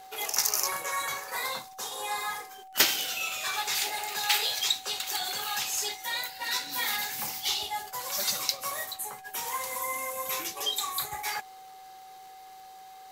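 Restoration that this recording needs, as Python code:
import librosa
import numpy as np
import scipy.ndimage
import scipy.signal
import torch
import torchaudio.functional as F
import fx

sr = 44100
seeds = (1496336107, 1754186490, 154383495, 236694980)

y = fx.fix_declick_ar(x, sr, threshold=6.5)
y = fx.notch(y, sr, hz=760.0, q=30.0)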